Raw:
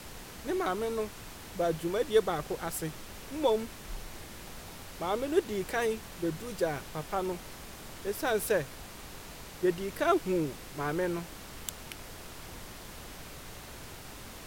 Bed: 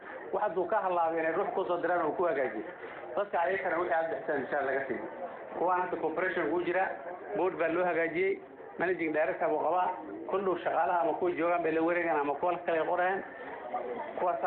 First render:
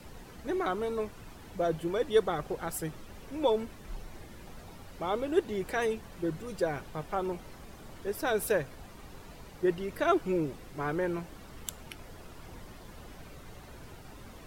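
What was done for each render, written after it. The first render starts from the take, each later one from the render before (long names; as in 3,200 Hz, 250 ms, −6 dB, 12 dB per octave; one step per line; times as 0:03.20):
broadband denoise 10 dB, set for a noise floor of −47 dBFS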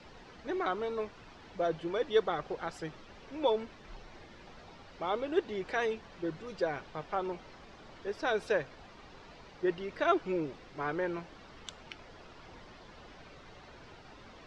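low-pass filter 5,400 Hz 24 dB per octave
low-shelf EQ 260 Hz −9.5 dB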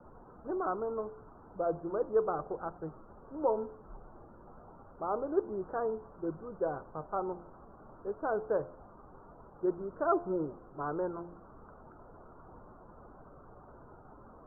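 Butterworth low-pass 1,400 Hz 72 dB per octave
hum removal 86.64 Hz, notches 12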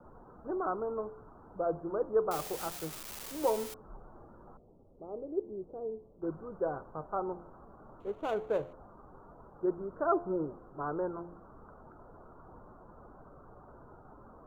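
0:02.31–0:03.74: spike at every zero crossing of −28.5 dBFS
0:04.57–0:06.22: transistor ladder low-pass 630 Hz, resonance 25%
0:08.00–0:08.73: running median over 25 samples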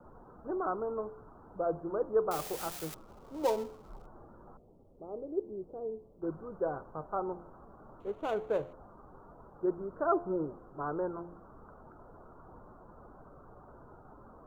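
0:02.94–0:04.06: gap after every zero crossing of 0.12 ms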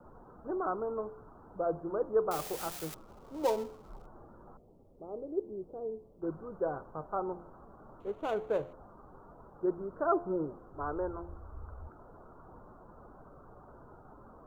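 0:10.74–0:11.89: low shelf with overshoot 110 Hz +11 dB, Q 3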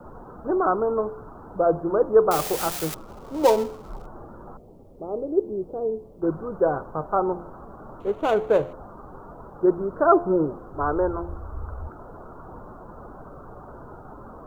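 level +12 dB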